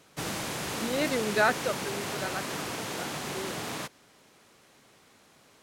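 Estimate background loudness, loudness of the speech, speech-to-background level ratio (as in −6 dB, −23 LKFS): −34.0 LKFS, −31.0 LKFS, 3.0 dB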